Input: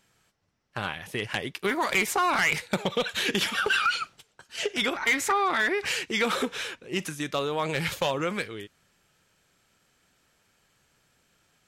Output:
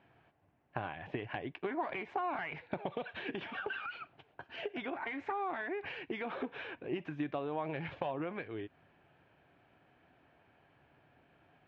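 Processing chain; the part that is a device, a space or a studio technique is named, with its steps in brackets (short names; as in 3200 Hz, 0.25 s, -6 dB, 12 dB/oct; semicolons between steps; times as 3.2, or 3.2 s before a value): bass amplifier (compressor 5:1, threshold -40 dBFS, peak gain reduction 17.5 dB; speaker cabinet 77–2300 Hz, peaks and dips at 200 Hz -7 dB, 290 Hz +4 dB, 490 Hz -4 dB, 710 Hz +6 dB, 1300 Hz -8 dB, 2000 Hz -6 dB); gain +5 dB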